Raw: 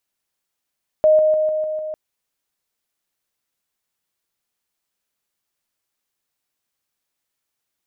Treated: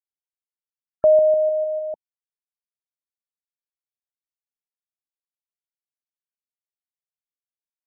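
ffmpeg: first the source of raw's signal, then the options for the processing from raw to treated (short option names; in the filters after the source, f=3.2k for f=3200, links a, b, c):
-f lavfi -i "aevalsrc='pow(10,(-9.5-3*floor(t/0.15))/20)*sin(2*PI*620*t)':d=0.9:s=44100"
-af "afftfilt=real='re*gte(hypot(re,im),0.02)':imag='im*gte(hypot(re,im),0.02)':win_size=1024:overlap=0.75"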